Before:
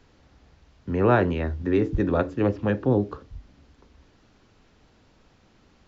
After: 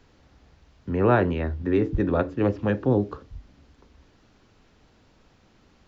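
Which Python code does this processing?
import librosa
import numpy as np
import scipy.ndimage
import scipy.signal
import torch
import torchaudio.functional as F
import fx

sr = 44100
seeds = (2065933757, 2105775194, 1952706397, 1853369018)

y = fx.air_absorb(x, sr, metres=79.0, at=(0.89, 2.42))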